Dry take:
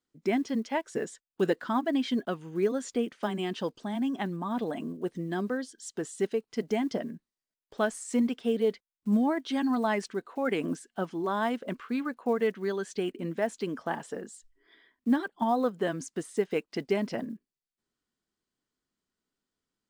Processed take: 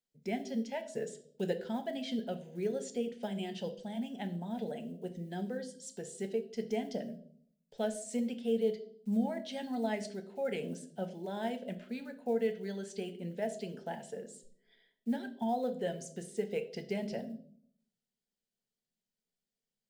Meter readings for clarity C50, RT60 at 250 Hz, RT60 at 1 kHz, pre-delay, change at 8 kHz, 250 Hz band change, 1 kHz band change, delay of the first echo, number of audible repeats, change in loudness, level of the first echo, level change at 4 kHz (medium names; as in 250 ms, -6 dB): 14.0 dB, 0.85 s, 0.45 s, 6 ms, -4.5 dB, -7.0 dB, -9.0 dB, no echo, no echo, -6.5 dB, no echo, -5.5 dB